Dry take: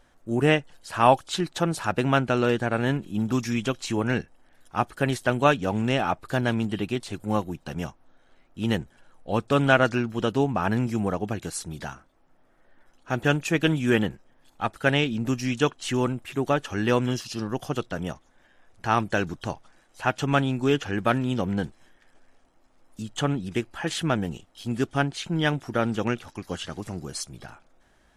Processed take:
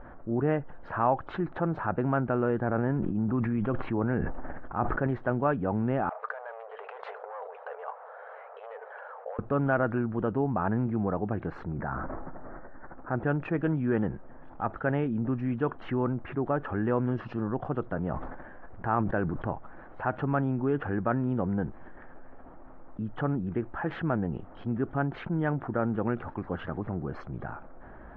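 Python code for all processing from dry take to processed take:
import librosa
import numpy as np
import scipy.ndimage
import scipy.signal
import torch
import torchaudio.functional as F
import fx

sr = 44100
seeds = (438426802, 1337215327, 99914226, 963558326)

y = fx.chain(x, sr, fx.air_absorb(metres=200.0),
    fx.sustainer(db_per_s=37.0), at=(2.63, 5.07))
y = fx.chain(y, sr, fx.clip_hard(threshold_db=-26.5),
    fx.over_compress(threshold_db=-40.0, ratio=-1.0),
    fx.brickwall_highpass(low_hz=420.0), at=(6.09, 9.39))
y = fx.chain(y, sr, fx.cheby1_bandstop(low_hz=1900.0, high_hz=7300.0, order=2),
    fx.sustainer(db_per_s=27.0), at=(11.71, 13.16))
y = fx.chain(y, sr, fx.resample_bad(factor=4, down='none', up='hold'),
    fx.sustainer(db_per_s=73.0), at=(17.97, 19.5))
y = scipy.signal.sosfilt(scipy.signal.butter(4, 1500.0, 'lowpass', fs=sr, output='sos'), y)
y = fx.env_flatten(y, sr, amount_pct=50)
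y = y * 10.0 ** (-8.5 / 20.0)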